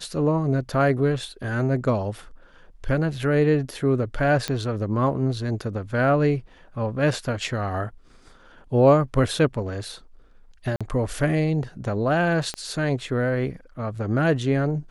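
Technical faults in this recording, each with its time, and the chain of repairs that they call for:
4.48 s: pop -11 dBFS
10.76–10.81 s: dropout 46 ms
12.54 s: pop -16 dBFS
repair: de-click; interpolate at 10.76 s, 46 ms

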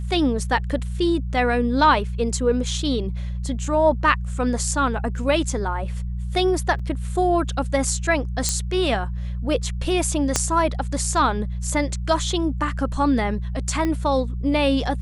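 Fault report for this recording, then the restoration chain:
hum 60 Hz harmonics 3 -27 dBFS
6.79 s: dropout 4.6 ms
8.49 s: pop -6 dBFS
10.36 s: pop -4 dBFS
13.85 s: pop -13 dBFS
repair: de-click; de-hum 60 Hz, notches 3; interpolate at 6.79 s, 4.6 ms

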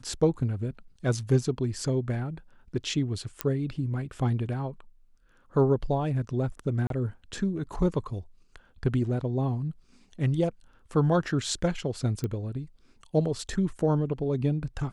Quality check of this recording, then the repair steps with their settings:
3.41 s: pop -10 dBFS
6.87–6.90 s: dropout 32 ms
12.24 s: pop -19 dBFS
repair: de-click; interpolate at 6.87 s, 32 ms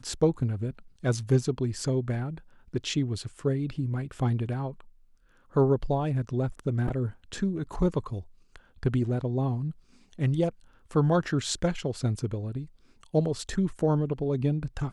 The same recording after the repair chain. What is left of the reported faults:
nothing left

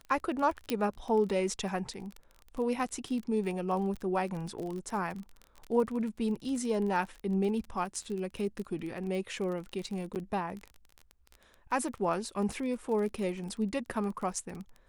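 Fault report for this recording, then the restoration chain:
crackle 28 per s -36 dBFS
0.70 s: pop -16 dBFS
10.15–10.16 s: dropout 8.6 ms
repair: de-click; interpolate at 10.15 s, 8.6 ms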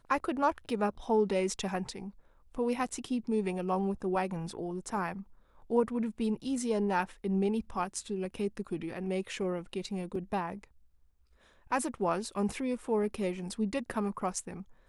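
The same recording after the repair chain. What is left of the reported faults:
0.70 s: pop

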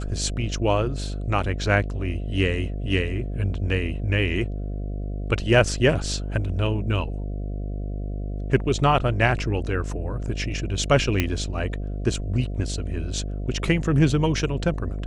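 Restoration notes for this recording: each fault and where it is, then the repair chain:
buzz 50 Hz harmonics 14 -29 dBFS
11.20 s: pop -7 dBFS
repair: de-click; de-hum 50 Hz, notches 14

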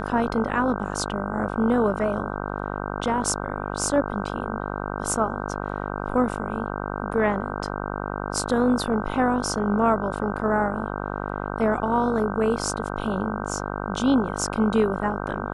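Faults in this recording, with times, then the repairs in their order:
buzz 50 Hz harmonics 31 -30 dBFS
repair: de-hum 50 Hz, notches 31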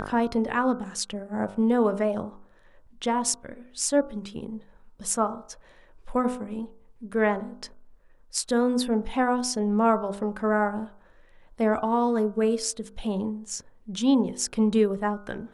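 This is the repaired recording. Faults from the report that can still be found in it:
nothing left

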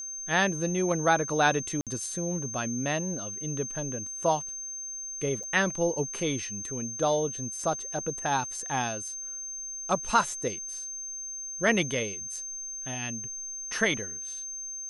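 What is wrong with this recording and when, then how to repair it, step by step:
whine 6.3 kHz -35 dBFS
1.81–1.87 s: dropout 57 ms
5.43–5.44 s: dropout 5.6 ms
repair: band-stop 6.3 kHz, Q 30; interpolate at 1.81 s, 57 ms; interpolate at 5.43 s, 5.6 ms

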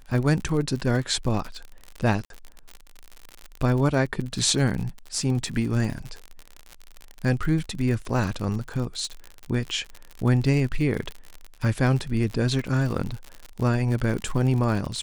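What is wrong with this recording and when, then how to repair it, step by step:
crackle 55 per s -29 dBFS
2.25–2.30 s: dropout 52 ms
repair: de-click; interpolate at 2.25 s, 52 ms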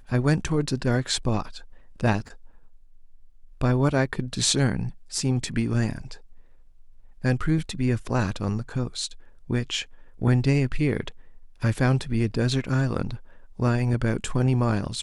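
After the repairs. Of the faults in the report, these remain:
nothing left

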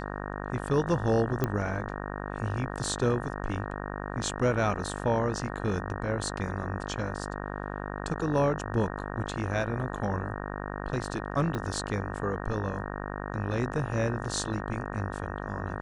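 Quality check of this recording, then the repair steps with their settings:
buzz 50 Hz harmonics 37 -36 dBFS
1.44 s: pop -14 dBFS
11.55 s: pop -20 dBFS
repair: de-click; de-hum 50 Hz, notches 37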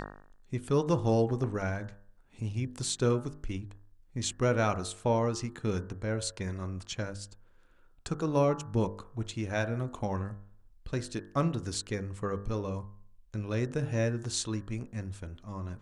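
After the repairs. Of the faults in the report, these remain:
11.55 s: pop

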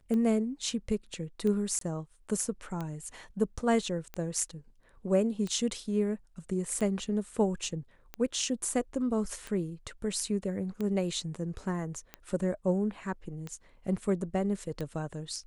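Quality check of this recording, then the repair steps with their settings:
tick 45 rpm -23 dBFS
1.79–1.81 s: dropout 23 ms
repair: de-click; interpolate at 1.79 s, 23 ms

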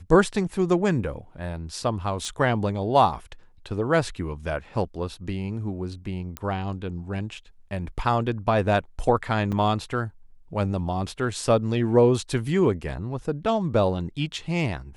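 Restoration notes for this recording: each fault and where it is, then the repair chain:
2.25 s: pop -22 dBFS
6.37 s: pop -15 dBFS
9.52–9.53 s: dropout 5.9 ms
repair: de-click; interpolate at 9.52 s, 5.9 ms

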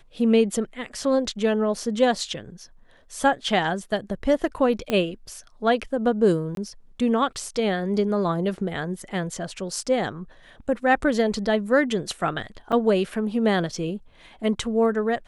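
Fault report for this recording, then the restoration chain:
4.90 s: pop -11 dBFS
6.55–6.57 s: dropout 22 ms
12.72–12.73 s: dropout 5.9 ms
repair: de-click; interpolate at 6.55 s, 22 ms; interpolate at 12.72 s, 5.9 ms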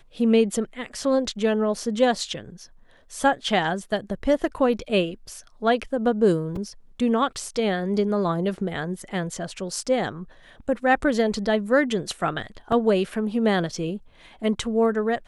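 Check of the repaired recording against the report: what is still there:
4.90 s: pop

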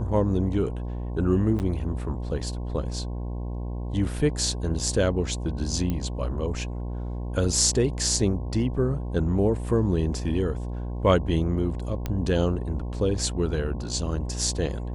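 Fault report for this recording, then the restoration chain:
buzz 60 Hz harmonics 18 -31 dBFS
1.59–1.60 s: dropout 9.4 ms
5.90 s: pop -16 dBFS
12.06 s: pop -15 dBFS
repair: de-click; de-hum 60 Hz, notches 18; interpolate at 1.59 s, 9.4 ms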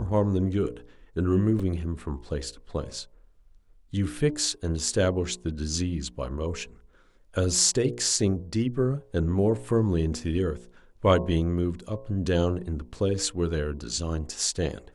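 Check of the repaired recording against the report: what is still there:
nothing left

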